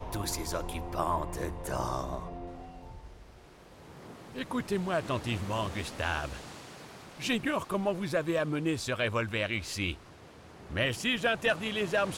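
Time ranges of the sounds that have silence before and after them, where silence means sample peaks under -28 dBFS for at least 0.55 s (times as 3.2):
4.38–6.26
7.24–9.91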